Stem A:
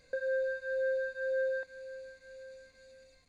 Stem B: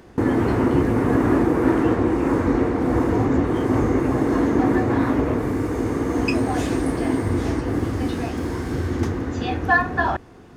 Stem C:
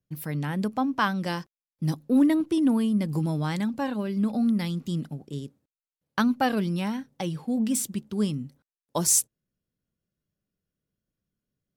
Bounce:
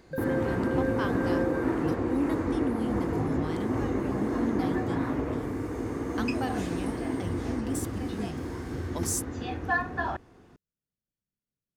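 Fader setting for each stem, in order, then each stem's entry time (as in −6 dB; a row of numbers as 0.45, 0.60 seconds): −1.0, −9.5, −10.0 decibels; 0.00, 0.00, 0.00 seconds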